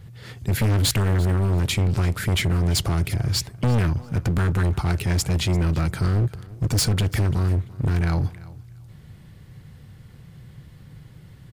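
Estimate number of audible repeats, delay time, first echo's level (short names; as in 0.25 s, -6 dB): 2, 0.341 s, -20.0 dB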